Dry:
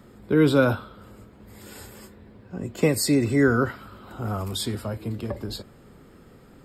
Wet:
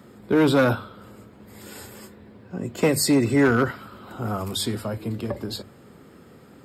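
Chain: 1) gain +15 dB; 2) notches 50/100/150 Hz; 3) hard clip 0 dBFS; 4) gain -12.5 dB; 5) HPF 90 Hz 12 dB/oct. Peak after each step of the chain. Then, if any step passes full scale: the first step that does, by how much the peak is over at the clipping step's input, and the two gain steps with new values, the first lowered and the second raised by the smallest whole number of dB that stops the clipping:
+8.5, +9.0, 0.0, -12.5, -9.0 dBFS; step 1, 9.0 dB; step 1 +6 dB, step 4 -3.5 dB

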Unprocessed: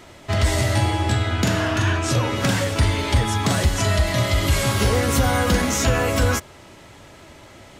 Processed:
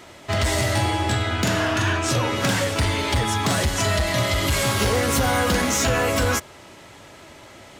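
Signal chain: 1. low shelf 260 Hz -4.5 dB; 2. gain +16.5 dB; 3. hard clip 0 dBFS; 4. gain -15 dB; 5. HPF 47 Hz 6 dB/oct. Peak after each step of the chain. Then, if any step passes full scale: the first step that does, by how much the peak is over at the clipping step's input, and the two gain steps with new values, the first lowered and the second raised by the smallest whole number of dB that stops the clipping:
-9.0, +7.5, 0.0, -15.0, -11.5 dBFS; step 2, 7.5 dB; step 2 +8.5 dB, step 4 -7 dB

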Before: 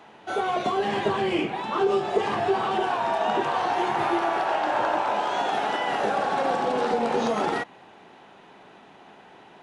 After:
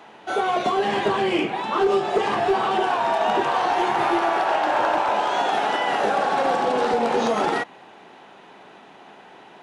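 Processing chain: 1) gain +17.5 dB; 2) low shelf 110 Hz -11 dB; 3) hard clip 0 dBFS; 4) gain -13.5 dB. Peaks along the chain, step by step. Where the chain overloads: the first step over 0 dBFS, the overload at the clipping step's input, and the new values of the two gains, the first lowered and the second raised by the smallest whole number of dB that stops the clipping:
+6.5, +5.5, 0.0, -13.5 dBFS; step 1, 5.5 dB; step 1 +11.5 dB, step 4 -7.5 dB

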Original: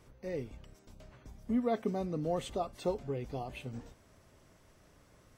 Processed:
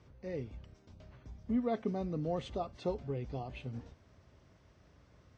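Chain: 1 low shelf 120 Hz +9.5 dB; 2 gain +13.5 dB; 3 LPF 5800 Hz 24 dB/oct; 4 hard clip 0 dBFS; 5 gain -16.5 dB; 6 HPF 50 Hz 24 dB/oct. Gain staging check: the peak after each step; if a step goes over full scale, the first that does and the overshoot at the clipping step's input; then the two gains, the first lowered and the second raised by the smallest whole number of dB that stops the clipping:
-19.5, -6.0, -6.0, -6.0, -22.5, -22.5 dBFS; no overload

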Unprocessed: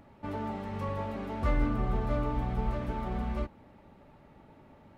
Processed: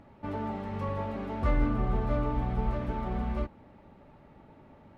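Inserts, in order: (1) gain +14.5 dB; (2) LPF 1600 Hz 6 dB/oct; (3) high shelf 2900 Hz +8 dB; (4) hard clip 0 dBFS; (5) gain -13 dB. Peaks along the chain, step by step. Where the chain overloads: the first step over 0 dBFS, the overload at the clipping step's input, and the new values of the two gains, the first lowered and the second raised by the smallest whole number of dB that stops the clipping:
-2.5, -2.5, -2.5, -2.5, -15.5 dBFS; no overload

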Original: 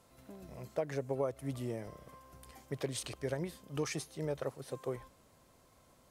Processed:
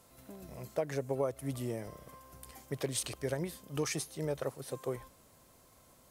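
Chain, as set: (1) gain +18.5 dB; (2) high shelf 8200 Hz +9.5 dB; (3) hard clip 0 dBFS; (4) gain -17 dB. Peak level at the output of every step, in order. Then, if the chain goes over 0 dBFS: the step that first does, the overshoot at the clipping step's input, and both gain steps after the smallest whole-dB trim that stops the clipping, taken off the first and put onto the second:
-4.5, -3.5, -3.5, -20.5 dBFS; no overload

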